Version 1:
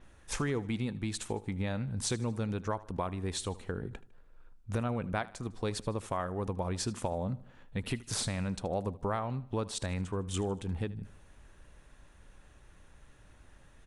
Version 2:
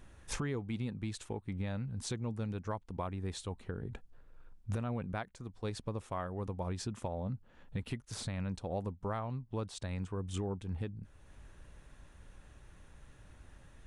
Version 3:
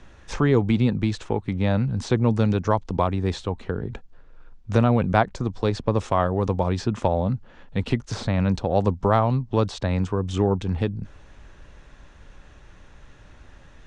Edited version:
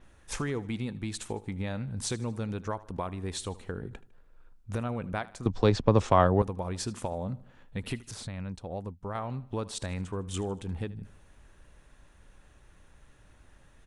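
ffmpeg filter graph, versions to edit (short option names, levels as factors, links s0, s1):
-filter_complex "[0:a]asplit=3[s0][s1][s2];[s0]atrim=end=5.462[s3];[2:a]atrim=start=5.458:end=6.422[s4];[s1]atrim=start=6.418:end=8.112[s5];[1:a]atrim=start=8.108:end=9.152[s6];[s2]atrim=start=9.148[s7];[s3][s4]acrossfade=d=0.004:c1=hsin:c2=hsin[s8];[s8][s5]acrossfade=d=0.004:c1=hsin:c2=hsin[s9];[s9][s6]acrossfade=d=0.004:c1=hsin:c2=hsin[s10];[s10][s7]acrossfade=d=0.004:c1=hsin:c2=hsin"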